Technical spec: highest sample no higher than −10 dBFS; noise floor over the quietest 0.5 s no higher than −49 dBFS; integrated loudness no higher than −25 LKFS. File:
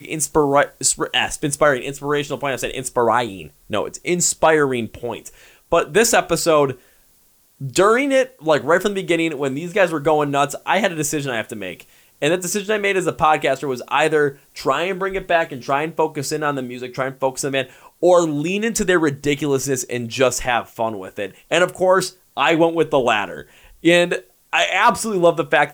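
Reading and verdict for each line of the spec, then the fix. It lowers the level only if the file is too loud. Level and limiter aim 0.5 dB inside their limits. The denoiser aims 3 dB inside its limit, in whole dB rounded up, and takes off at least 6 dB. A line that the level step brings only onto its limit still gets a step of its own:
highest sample −4.0 dBFS: out of spec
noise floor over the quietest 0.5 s −56 dBFS: in spec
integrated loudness −19.0 LKFS: out of spec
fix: level −6.5 dB

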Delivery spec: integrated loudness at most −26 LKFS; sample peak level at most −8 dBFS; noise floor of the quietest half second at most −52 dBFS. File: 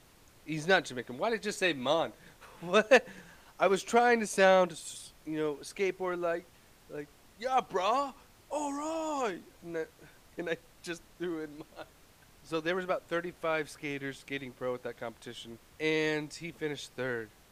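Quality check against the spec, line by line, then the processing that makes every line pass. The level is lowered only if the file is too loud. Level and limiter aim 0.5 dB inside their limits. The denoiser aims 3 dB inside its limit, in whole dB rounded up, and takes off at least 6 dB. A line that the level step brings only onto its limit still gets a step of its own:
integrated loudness −31.5 LKFS: in spec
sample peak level −10.5 dBFS: in spec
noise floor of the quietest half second −60 dBFS: in spec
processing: no processing needed

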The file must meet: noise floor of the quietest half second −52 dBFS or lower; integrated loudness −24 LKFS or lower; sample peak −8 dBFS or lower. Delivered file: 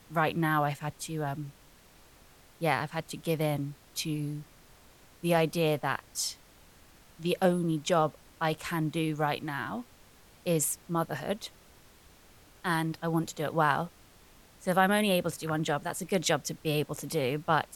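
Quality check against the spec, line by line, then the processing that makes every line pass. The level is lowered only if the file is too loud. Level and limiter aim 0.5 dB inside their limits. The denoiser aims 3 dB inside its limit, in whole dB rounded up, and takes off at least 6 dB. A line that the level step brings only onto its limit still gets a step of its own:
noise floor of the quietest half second −57 dBFS: in spec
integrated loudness −30.5 LKFS: in spec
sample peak −11.0 dBFS: in spec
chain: no processing needed

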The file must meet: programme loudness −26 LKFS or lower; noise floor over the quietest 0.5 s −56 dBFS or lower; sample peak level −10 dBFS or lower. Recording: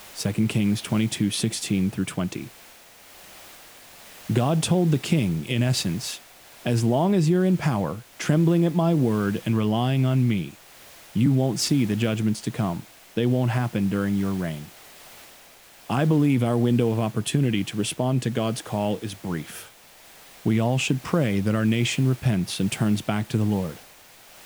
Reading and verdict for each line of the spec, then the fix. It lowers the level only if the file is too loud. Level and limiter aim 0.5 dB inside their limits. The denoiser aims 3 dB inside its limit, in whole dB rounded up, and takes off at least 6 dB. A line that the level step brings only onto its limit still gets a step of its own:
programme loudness −24.0 LKFS: out of spec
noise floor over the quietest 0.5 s −50 dBFS: out of spec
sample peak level −7.5 dBFS: out of spec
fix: broadband denoise 7 dB, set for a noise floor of −50 dBFS
level −2.5 dB
brickwall limiter −10.5 dBFS

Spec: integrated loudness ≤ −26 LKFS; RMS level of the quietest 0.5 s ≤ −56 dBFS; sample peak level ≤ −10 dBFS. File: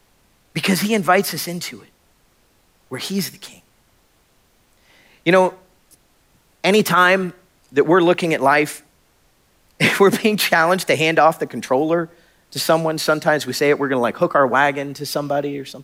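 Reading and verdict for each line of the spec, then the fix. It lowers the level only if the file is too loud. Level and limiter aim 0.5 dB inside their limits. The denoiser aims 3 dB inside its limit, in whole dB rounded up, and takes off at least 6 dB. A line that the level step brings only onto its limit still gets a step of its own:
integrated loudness −17.5 LKFS: out of spec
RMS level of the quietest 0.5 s −59 dBFS: in spec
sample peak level −3.0 dBFS: out of spec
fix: level −9 dB

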